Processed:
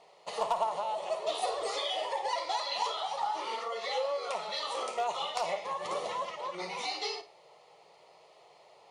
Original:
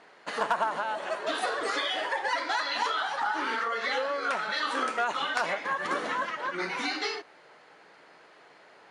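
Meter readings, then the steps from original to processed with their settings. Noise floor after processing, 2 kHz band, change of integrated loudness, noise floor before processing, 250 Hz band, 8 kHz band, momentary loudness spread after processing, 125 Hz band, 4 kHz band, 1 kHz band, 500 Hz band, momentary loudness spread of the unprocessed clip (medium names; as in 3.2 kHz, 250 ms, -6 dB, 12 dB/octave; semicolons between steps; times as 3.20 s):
-60 dBFS, -13.0 dB, -4.0 dB, -56 dBFS, -12.0 dB, -0.5 dB, 4 LU, no reading, -2.5 dB, -3.0 dB, -0.5 dB, 4 LU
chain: static phaser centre 650 Hz, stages 4; flutter echo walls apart 9.3 m, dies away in 0.26 s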